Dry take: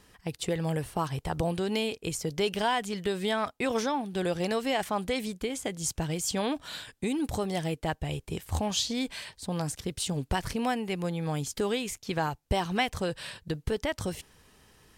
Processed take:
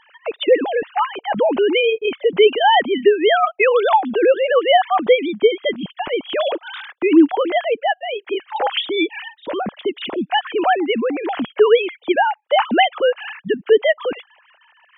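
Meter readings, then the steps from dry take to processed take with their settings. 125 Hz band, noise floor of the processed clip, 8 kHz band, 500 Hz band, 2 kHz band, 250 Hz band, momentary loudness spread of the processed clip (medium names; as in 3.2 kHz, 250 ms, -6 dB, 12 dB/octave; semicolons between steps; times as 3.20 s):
no reading, -58 dBFS, under -40 dB, +16.5 dB, +14.0 dB, +10.0 dB, 11 LU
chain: formants replaced by sine waves; loudness maximiser +16 dB; trim -2 dB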